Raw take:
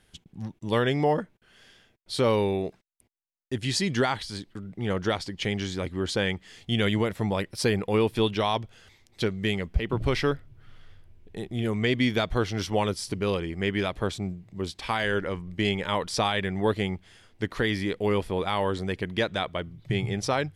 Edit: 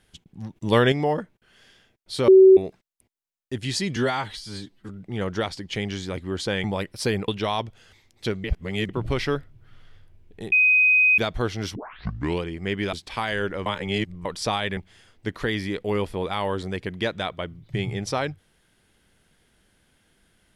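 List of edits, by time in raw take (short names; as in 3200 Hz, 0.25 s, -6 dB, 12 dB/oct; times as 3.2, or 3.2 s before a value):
0.56–0.92 gain +6 dB
2.28–2.57 bleep 380 Hz -7.5 dBFS
3.96–4.58 stretch 1.5×
6.33–7.23 cut
7.87–8.24 cut
9.4–9.85 reverse
11.48–12.14 bleep 2510 Hz -14 dBFS
12.71 tape start 0.68 s
13.89–14.65 cut
15.38–15.97 reverse
16.49–16.93 cut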